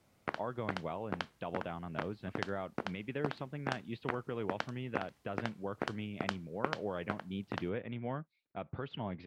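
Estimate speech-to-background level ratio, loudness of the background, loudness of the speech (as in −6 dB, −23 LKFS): 2.0 dB, −43.5 LKFS, −41.5 LKFS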